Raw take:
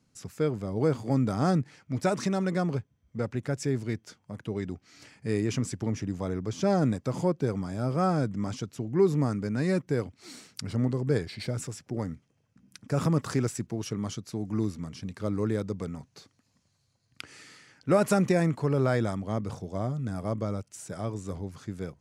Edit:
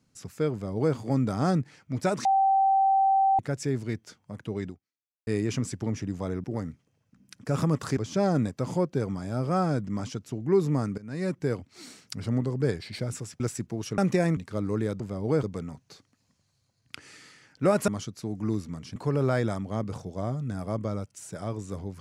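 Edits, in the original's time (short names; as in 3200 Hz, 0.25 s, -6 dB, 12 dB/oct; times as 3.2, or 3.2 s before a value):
0.52–0.95 copy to 15.69
2.25–3.39 bleep 777 Hz -18.5 dBFS
4.68–5.27 fade out exponential
9.45–9.86 fade in, from -20 dB
11.87–13.4 move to 6.44
13.98–15.06 swap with 18.14–18.53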